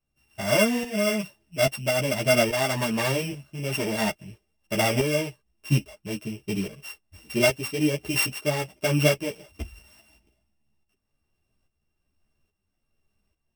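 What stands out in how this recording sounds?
a buzz of ramps at a fixed pitch in blocks of 16 samples; tremolo saw up 1.2 Hz, depth 65%; a shimmering, thickened sound

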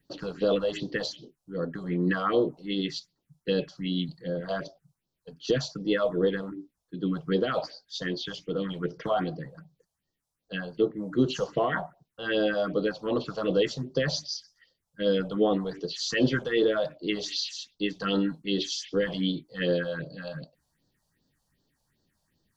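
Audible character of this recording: phasing stages 4, 2.6 Hz, lowest notch 300–2200 Hz

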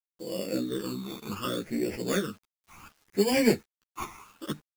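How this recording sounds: aliases and images of a low sample rate 4 kHz, jitter 0%; phasing stages 12, 0.67 Hz, lowest notch 510–1200 Hz; a quantiser's noise floor 10-bit, dither none; a shimmering, thickened sound

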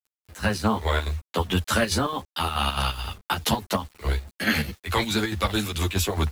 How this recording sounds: chopped level 4.7 Hz, depth 60%, duty 65%; a quantiser's noise floor 8-bit, dither none; a shimmering, thickened sound

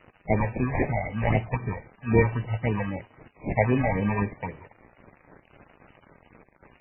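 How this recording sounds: aliases and images of a low sample rate 1.4 kHz, jitter 0%; phasing stages 6, 3.8 Hz, lowest notch 290–1500 Hz; a quantiser's noise floor 8-bit, dither none; MP3

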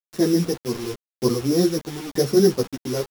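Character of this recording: a buzz of ramps at a fixed pitch in blocks of 8 samples; tremolo saw down 0.93 Hz, depth 90%; a quantiser's noise floor 6-bit, dither none; a shimmering, thickened sound

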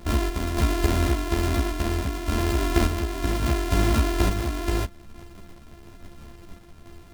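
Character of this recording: a buzz of ramps at a fixed pitch in blocks of 128 samples; random-step tremolo; a shimmering, thickened sound

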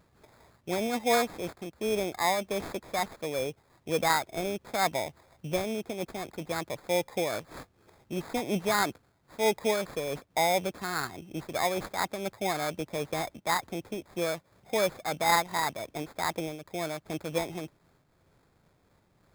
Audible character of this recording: aliases and images of a low sample rate 2.9 kHz, jitter 0%; random flutter of the level

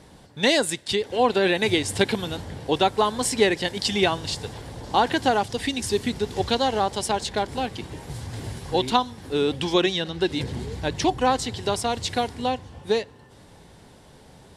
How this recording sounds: noise floor -50 dBFS; spectral tilt -4.0 dB/octave

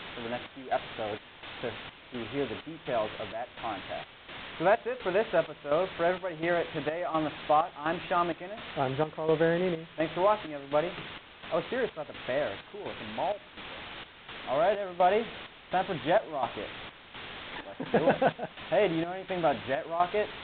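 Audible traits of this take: a quantiser's noise floor 6-bit, dither triangular; chopped level 1.4 Hz, depth 65%, duty 65%; A-law

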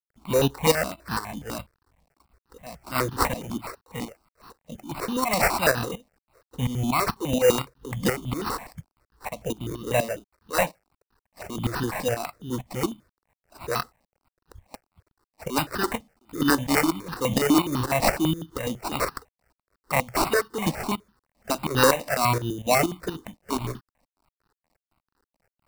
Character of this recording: aliases and images of a low sample rate 3.3 kHz, jitter 0%; tremolo saw up 4.2 Hz, depth 75%; a quantiser's noise floor 12-bit, dither none; notches that jump at a steady rate 12 Hz 390–2200 Hz

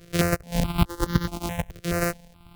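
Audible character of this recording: a buzz of ramps at a fixed pitch in blocks of 256 samples; tremolo triangle 1.6 Hz, depth 45%; notches that jump at a steady rate 4.7 Hz 240–2500 Hz

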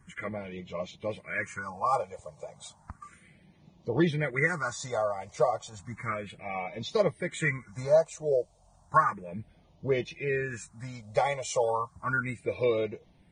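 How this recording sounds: a quantiser's noise floor 12-bit, dither triangular; phasing stages 4, 0.33 Hz, lowest notch 250–1500 Hz; Vorbis

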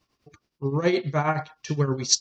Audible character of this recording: tremolo triangle 9.5 Hz, depth 80%

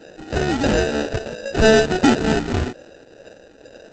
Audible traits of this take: phasing stages 6, 2.2 Hz, lowest notch 740–1800 Hz; aliases and images of a low sample rate 1.1 kHz, jitter 0%; Opus

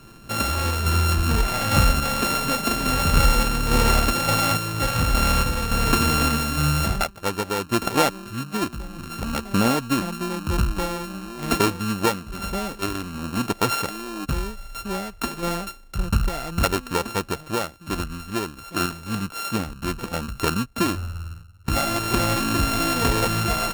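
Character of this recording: a buzz of ramps at a fixed pitch in blocks of 32 samples; random-step tremolo

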